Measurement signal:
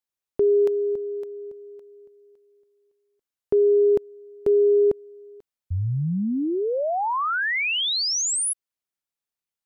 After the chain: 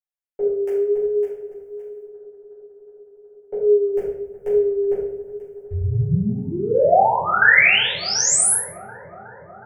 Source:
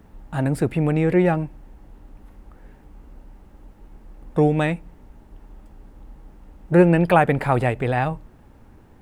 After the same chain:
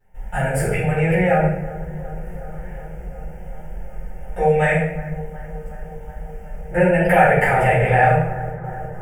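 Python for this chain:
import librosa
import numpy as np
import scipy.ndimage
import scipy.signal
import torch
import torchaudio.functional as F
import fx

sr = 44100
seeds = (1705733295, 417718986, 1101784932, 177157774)

p1 = fx.gate_hold(x, sr, open_db=-38.0, close_db=-43.0, hold_ms=203.0, range_db=-18, attack_ms=1.3, release_ms=92.0)
p2 = fx.over_compress(p1, sr, threshold_db=-25.0, ratio=-1.0)
p3 = p1 + F.gain(torch.from_numpy(p2), 0.0).numpy()
p4 = fx.low_shelf(p3, sr, hz=450.0, db=-6.0)
p5 = fx.fixed_phaser(p4, sr, hz=1100.0, stages=6)
p6 = fx.vibrato(p5, sr, rate_hz=1.2, depth_cents=41.0)
p7 = p6 + fx.echo_bbd(p6, sr, ms=367, stages=4096, feedback_pct=80, wet_db=-18.0, dry=0)
p8 = fx.room_shoebox(p7, sr, seeds[0], volume_m3=220.0, walls='mixed', distance_m=4.2)
y = F.gain(torch.from_numpy(p8), -7.0).numpy()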